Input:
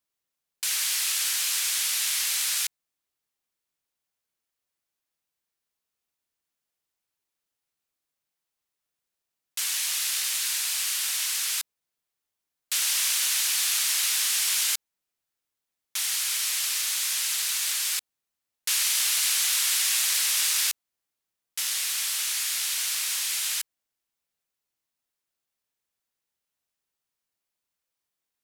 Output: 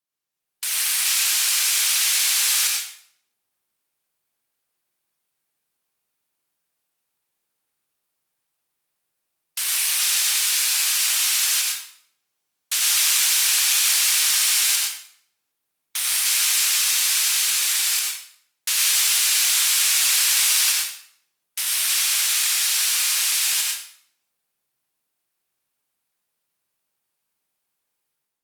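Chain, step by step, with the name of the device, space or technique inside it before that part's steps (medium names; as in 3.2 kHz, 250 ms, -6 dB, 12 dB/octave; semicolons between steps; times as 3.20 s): far-field microphone of a smart speaker (reverberation RT60 0.60 s, pre-delay 86 ms, DRR -1 dB; high-pass 100 Hz 24 dB/octave; level rider gain up to 10 dB; trim -4.5 dB; Opus 48 kbps 48 kHz)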